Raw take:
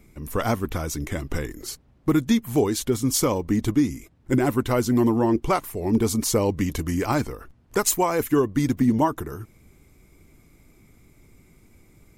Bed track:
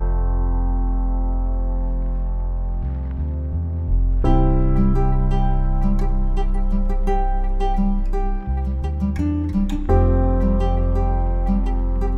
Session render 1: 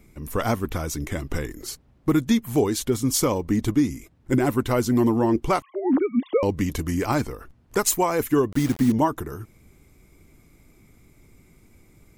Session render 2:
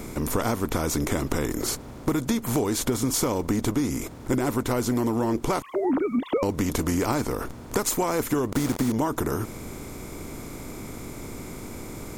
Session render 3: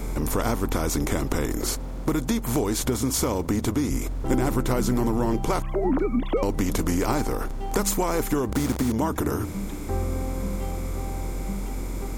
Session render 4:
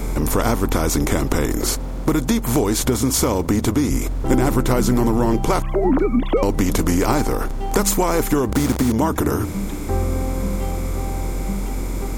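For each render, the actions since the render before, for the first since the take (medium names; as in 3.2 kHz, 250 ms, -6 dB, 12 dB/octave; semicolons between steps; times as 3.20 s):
5.62–6.43 s: formants replaced by sine waves; 8.52–8.92 s: word length cut 6-bit, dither none
spectral levelling over time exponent 0.6; compression, threshold -21 dBFS, peak gain reduction 8.5 dB
add bed track -11.5 dB
trim +6 dB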